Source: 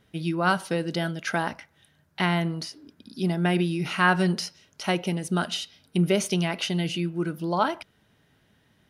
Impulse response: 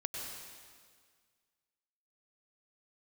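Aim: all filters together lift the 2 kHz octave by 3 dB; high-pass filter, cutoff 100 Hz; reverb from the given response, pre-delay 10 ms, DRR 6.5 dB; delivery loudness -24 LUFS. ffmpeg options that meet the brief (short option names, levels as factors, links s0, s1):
-filter_complex "[0:a]highpass=100,equalizer=f=2000:t=o:g=4,asplit=2[s0][s1];[1:a]atrim=start_sample=2205,adelay=10[s2];[s1][s2]afir=irnorm=-1:irlink=0,volume=0.398[s3];[s0][s3]amix=inputs=2:normalize=0,volume=1.12"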